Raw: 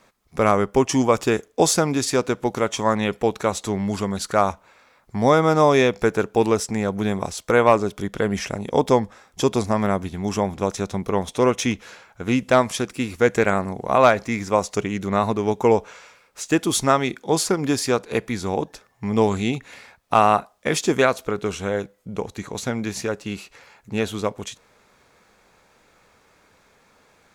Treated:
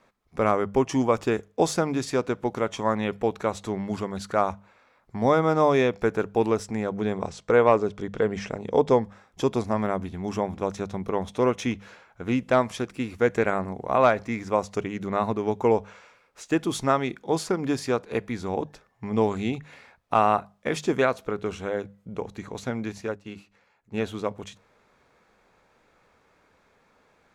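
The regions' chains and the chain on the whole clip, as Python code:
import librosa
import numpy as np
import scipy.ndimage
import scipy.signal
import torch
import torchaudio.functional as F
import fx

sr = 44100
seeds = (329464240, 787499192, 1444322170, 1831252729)

y = fx.chain(x, sr, fx.lowpass(hz=8600.0, slope=24),
    fx.peak_eq(hz=450.0, db=5.5, octaves=0.26), at=(6.91, 9.02))
y = fx.chain(y, sr, fx.hum_notches(base_hz=50, count=6),
    fx.upward_expand(threshold_db=-42.0, expansion=1.5), at=(22.92, 23.94))
y = fx.high_shelf(y, sr, hz=4300.0, db=-11.0)
y = fx.hum_notches(y, sr, base_hz=50, count=4)
y = F.gain(torch.from_numpy(y), -4.0).numpy()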